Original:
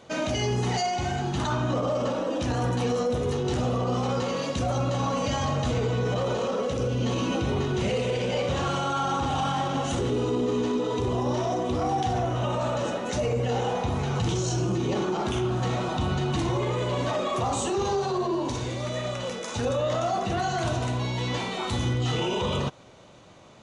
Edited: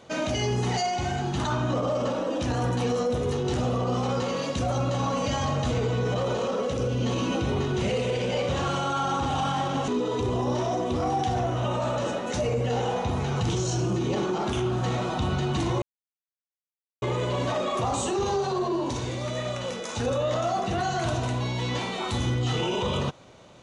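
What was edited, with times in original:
9.88–10.67 s: delete
16.61 s: insert silence 1.20 s

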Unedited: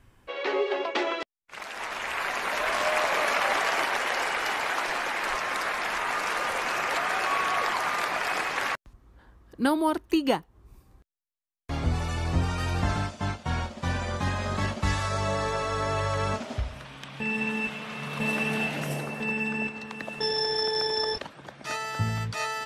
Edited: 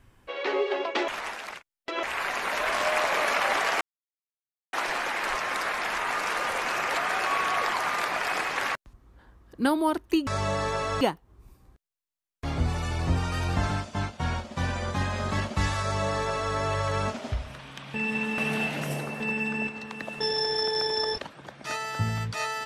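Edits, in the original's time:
1.08–2.03 s: reverse
3.81–4.73 s: mute
15.07–15.81 s: copy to 10.27 s
17.64–18.38 s: delete

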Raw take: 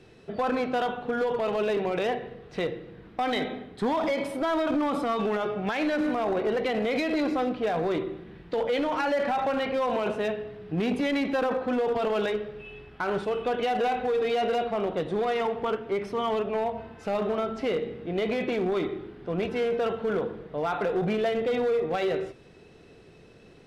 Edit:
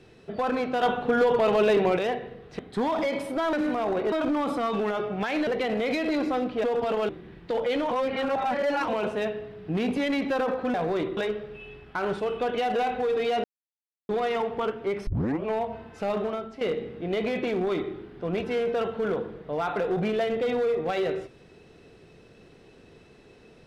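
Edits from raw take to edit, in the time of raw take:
0.83–1.97 s: gain +5.5 dB
2.59–3.64 s: delete
5.93–6.52 s: move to 4.58 s
7.69–8.12 s: swap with 11.77–12.22 s
8.94–9.91 s: reverse
14.49–15.14 s: mute
16.12 s: tape start 0.38 s
17.22–17.66 s: fade out linear, to -12 dB

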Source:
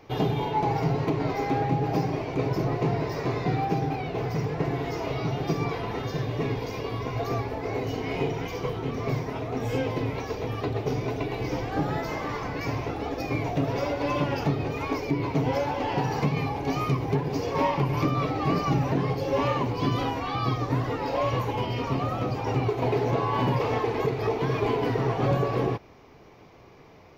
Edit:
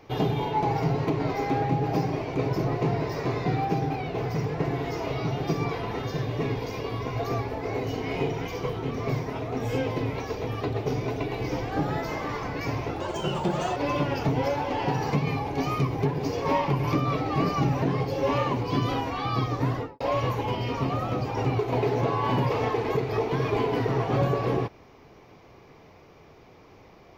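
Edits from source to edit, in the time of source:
13.00–13.97 s: speed 127%
14.49–15.38 s: delete
20.82–21.10 s: studio fade out

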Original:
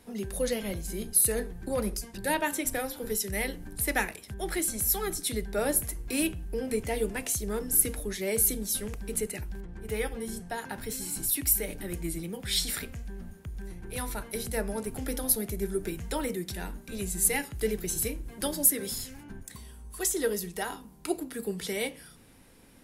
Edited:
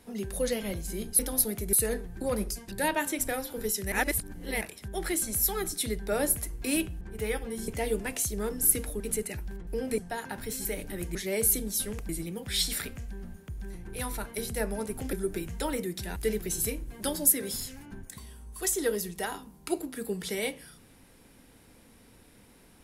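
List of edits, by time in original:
3.38–4.07 s: reverse
6.47–6.78 s: swap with 9.71–10.38 s
8.10–9.04 s: move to 12.06 s
11.05–11.56 s: delete
15.10–15.64 s: move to 1.19 s
16.67–17.54 s: delete

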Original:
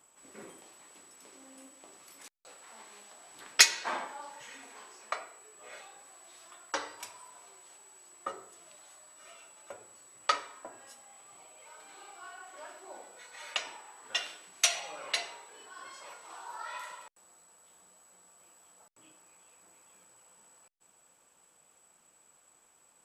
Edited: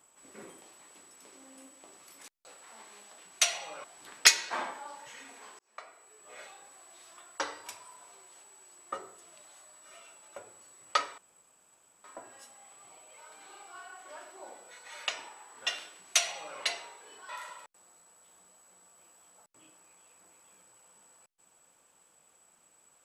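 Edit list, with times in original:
4.93–5.65 s: fade in
10.52 s: insert room tone 0.86 s
14.40–15.06 s: copy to 3.18 s
15.77–16.71 s: delete

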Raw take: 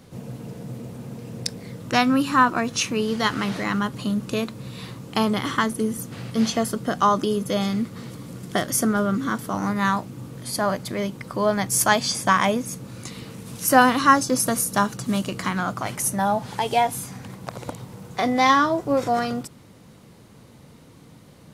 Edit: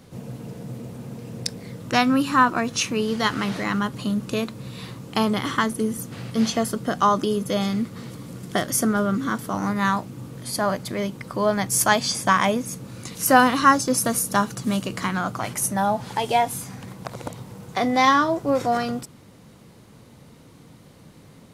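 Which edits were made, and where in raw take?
13.15–13.57 s: delete

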